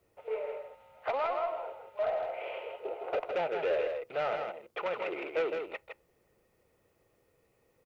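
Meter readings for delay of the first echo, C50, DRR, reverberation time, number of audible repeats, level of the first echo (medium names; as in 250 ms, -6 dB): 161 ms, no reverb, no reverb, no reverb, 1, -5.5 dB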